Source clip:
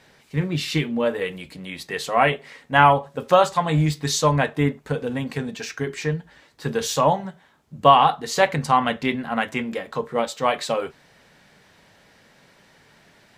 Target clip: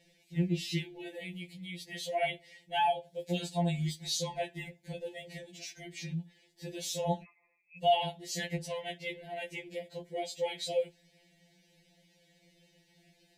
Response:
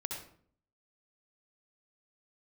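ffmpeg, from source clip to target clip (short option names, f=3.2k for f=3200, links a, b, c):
-filter_complex "[0:a]asuperstop=centerf=1200:order=4:qfactor=0.82,asettb=1/sr,asplit=3[a][b][c];[a]atrim=end=7.234[d];[b]atrim=start=7.23:end=7.77,asetpts=PTS-STARTPTS,afade=t=in:d=0.004:c=qsin,afade=t=out:st=0.536:d=0.004:c=qsin,lowpass=f=2.3k:t=q:w=0.5098,lowpass=f=2.3k:t=q:w=0.6013,lowpass=f=2.3k:t=q:w=0.9,lowpass=f=2.3k:t=q:w=2.563,afreqshift=-2700[e];[c]atrim=start=7.766[f];[d][e]acrossfade=d=0.004:c1=hsin:c2=qsin[g];[g][f]acrossfade=d=0.004:c1=qsin:c2=hsin,afftfilt=real='re*2.83*eq(mod(b,8),0)':imag='im*2.83*eq(mod(b,8),0)':win_size=2048:overlap=0.75,volume=-7dB"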